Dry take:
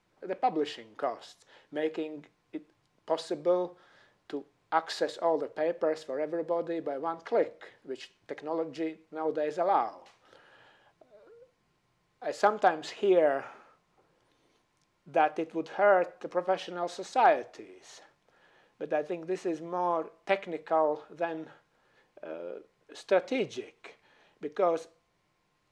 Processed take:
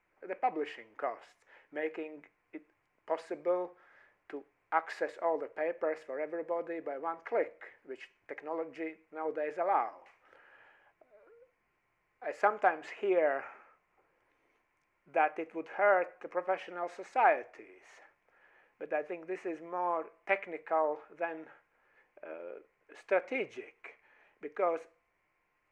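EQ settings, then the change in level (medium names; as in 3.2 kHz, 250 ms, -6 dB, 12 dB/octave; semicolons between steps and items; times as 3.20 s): peaking EQ 150 Hz -10.5 dB 1.6 oct; resonant high shelf 2.9 kHz -8.5 dB, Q 3; -3.5 dB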